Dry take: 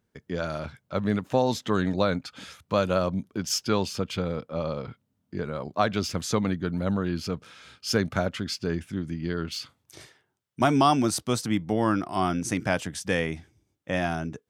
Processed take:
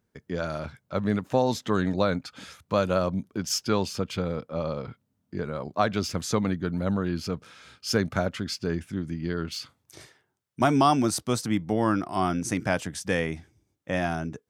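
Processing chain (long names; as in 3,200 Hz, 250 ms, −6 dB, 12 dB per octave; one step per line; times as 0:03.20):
parametric band 3,100 Hz −2.5 dB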